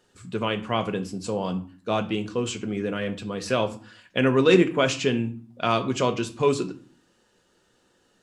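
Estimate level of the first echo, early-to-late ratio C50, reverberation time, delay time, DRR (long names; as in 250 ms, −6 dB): no echo audible, 15.0 dB, 0.50 s, no echo audible, 7.0 dB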